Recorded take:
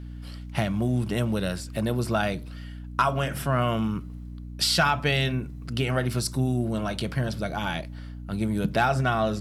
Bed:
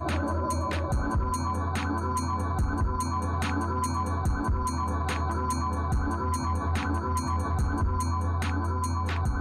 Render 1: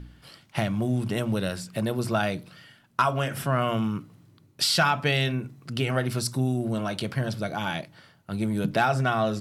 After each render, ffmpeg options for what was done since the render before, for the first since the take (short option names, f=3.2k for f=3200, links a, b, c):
-af "bandreject=f=60:t=h:w=4,bandreject=f=120:t=h:w=4,bandreject=f=180:t=h:w=4,bandreject=f=240:t=h:w=4,bandreject=f=300:t=h:w=4"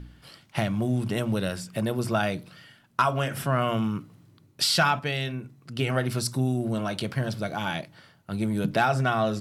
-filter_complex "[0:a]asettb=1/sr,asplit=3[a][b][c];[a]atrim=end=1.454[d];[b]atrim=start=1.45:end=2.34,asetpts=PTS-STARTPTS,afade=t=in:d=0.004:c=qsin,afade=t=out:st=0.886:d=0.004:c=qsin,bandreject=f=4.1k:w=12[e];[c]atrim=start=2.336[f];[d][e]acrossfade=d=0.004:c1=hsin:c2=qsin[g];[g][f]acrossfade=d=0.004:c1=qsin:c2=hsin,asettb=1/sr,asplit=3[h][i][j];[h]atrim=end=7.124[k];[i]atrim=start=7.12:end=7.65,asetpts=PTS-STARTPTS,afade=t=in:d=0.004:c=qsin,afade=t=out:st=0.526:d=0.004:c=qsin,aeval=exprs='sgn(val(0))*max(abs(val(0))-0.00178,0)':c=same[l];[j]atrim=start=7.646[m];[k][l]acrossfade=d=0.004:c1=hsin:c2=qsin[n];[n][m]acrossfade=d=0.004:c1=qsin:c2=hsin,asplit=3[o][p][q];[o]atrim=end=4.992[r];[p]atrim=start=4.988:end=5.792,asetpts=PTS-STARTPTS,volume=-5dB[s];[q]atrim=start=5.788[t];[r][s]acrossfade=d=0.004:c1=hsin:c2=hsin[u];[u][t]acrossfade=d=0.004:c1=hsin:c2=hsin"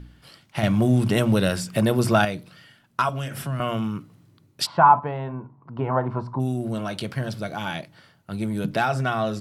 -filter_complex "[0:a]asettb=1/sr,asplit=3[a][b][c];[a]atrim=end=0.634[d];[b]atrim=start=0.63:end=2.25,asetpts=PTS-STARTPTS,afade=t=in:d=0.004:c=qsin,afade=t=out:st=1.616:d=0.004:c=qsin,acontrast=85[e];[c]atrim=start=2.246[f];[d][e]acrossfade=d=0.004:c1=hsin:c2=qsin[g];[g][f]acrossfade=d=0.004:c1=qsin:c2=hsin,asettb=1/sr,asplit=3[h][i][j];[h]atrim=end=3.094[k];[i]atrim=start=3.09:end=3.6,asetpts=PTS-STARTPTS,afade=t=in:d=0.004:c=qsin,afade=t=out:st=0.506:d=0.004:c=qsin,acrossover=split=250|3000[l][m][n];[m]acompressor=threshold=-34dB:ratio=6:attack=3.2:release=140:knee=2.83:detection=peak[o];[l][o][n]amix=inputs=3:normalize=0[p];[j]atrim=start=3.596[q];[k][p]acrossfade=d=0.004:c1=hsin:c2=qsin[r];[r][q]acrossfade=d=0.004:c1=qsin:c2=hsin,asplit=3[s][t][u];[s]afade=t=out:st=4.65:d=0.02[v];[t]lowpass=f=970:t=q:w=9.8,afade=t=in:st=4.65:d=0.02,afade=t=out:st=6.39:d=0.02[w];[u]afade=t=in:st=6.39:d=0.02[x];[v][w][x]amix=inputs=3:normalize=0"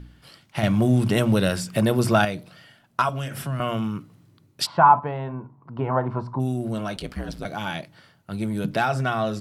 -filter_complex "[0:a]asettb=1/sr,asplit=3[a][b][c];[a]atrim=end=2.374[d];[b]atrim=start=2.37:end=3.02,asetpts=PTS-STARTPTS,afade=t=in:d=0.004:c=qsin,afade=t=out:st=0.646:d=0.004:c=qsin,equalizer=f=680:w=2.2:g=6.5[e];[c]atrim=start=3.016[f];[d][e]acrossfade=d=0.004:c1=hsin:c2=qsin[g];[g][f]acrossfade=d=0.004:c1=qsin:c2=hsin,asettb=1/sr,asplit=3[h][i][j];[h]atrim=end=6.964[k];[i]atrim=start=6.96:end=7.45,asetpts=PTS-STARTPTS,afade=t=in:d=0.004:c=qsin,afade=t=out:st=0.486:d=0.004:c=qsin,aeval=exprs='val(0)*sin(2*PI*61*n/s)':c=same[l];[j]atrim=start=7.446[m];[k][l]acrossfade=d=0.004:c1=hsin:c2=qsin[n];[n][m]acrossfade=d=0.004:c1=qsin:c2=hsin"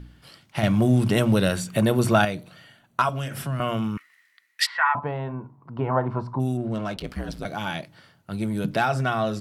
-filter_complex "[0:a]asettb=1/sr,asplit=3[a][b][c];[a]atrim=end=1.494[d];[b]atrim=start=1.49:end=3.01,asetpts=PTS-STARTPTS,afade=t=in:d=0.004:c=qsin,afade=t=out:st=1.516:d=0.004:c=qsin,asuperstop=centerf=5100:order=12:qfactor=7.9[e];[c]atrim=start=3.006[f];[d][e]acrossfade=d=0.004:c1=hsin:c2=qsin[g];[g][f]acrossfade=d=0.004:c1=qsin:c2=hsin,asettb=1/sr,asplit=3[h][i][j];[h]atrim=end=3.974[k];[i]atrim=start=3.97:end=4.95,asetpts=PTS-STARTPTS,afade=t=in:d=0.004:c=qsin,afade=t=out:st=0.976:d=0.004:c=qsin,highpass=f=1.9k:t=q:w=14[l];[j]atrim=start=4.946[m];[k][l]acrossfade=d=0.004:c1=hsin:c2=qsin[n];[n][m]acrossfade=d=0.004:c1=qsin:c2=hsin,asettb=1/sr,asplit=3[o][p][q];[o]atrim=end=6.574[r];[p]atrim=start=6.57:end=7.07,asetpts=PTS-STARTPTS,afade=t=in:d=0.004:c=qsin,afade=t=out:st=0.496:d=0.004:c=qsin,adynamicsmooth=sensitivity=7.5:basefreq=2.2k[s];[q]atrim=start=7.066[t];[r][s]acrossfade=d=0.004:c1=hsin:c2=qsin[u];[u][t]acrossfade=d=0.004:c1=qsin:c2=hsin"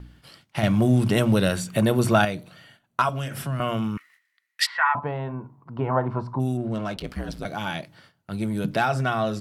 -af "agate=range=-10dB:threshold=-53dB:ratio=16:detection=peak"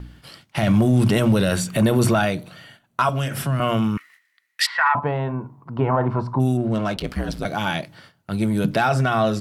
-af "alimiter=limit=-15dB:level=0:latency=1:release=13,acontrast=48"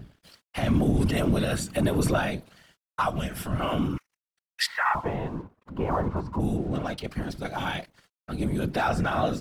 -af "aeval=exprs='sgn(val(0))*max(abs(val(0))-0.00501,0)':c=same,afftfilt=real='hypot(re,im)*cos(2*PI*random(0))':imag='hypot(re,im)*sin(2*PI*random(1))':win_size=512:overlap=0.75"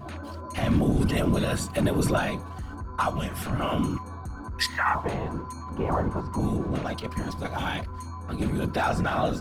-filter_complex "[1:a]volume=-9.5dB[a];[0:a][a]amix=inputs=2:normalize=0"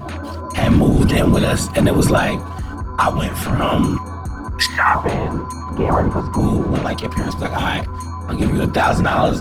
-af "volume=10dB,alimiter=limit=-3dB:level=0:latency=1"